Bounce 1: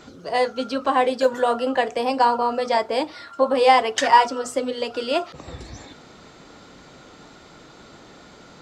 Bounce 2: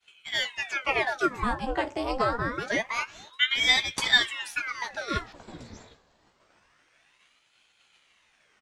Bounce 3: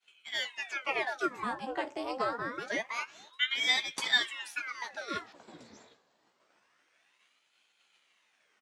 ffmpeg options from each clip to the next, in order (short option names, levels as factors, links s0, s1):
-filter_complex "[0:a]agate=range=0.0224:threshold=0.0141:ratio=3:detection=peak,asplit=2[s0][s1];[s1]adelay=15,volume=0.447[s2];[s0][s2]amix=inputs=2:normalize=0,aeval=exprs='val(0)*sin(2*PI*1500*n/s+1500*0.9/0.26*sin(2*PI*0.26*n/s))':c=same,volume=0.562"
-af "highpass=220,volume=0.501"